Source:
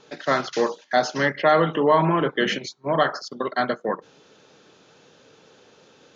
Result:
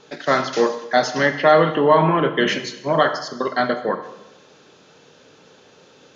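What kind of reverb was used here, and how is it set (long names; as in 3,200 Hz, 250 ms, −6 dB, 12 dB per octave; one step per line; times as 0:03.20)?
dense smooth reverb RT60 0.98 s, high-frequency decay 1×, DRR 8 dB
level +3 dB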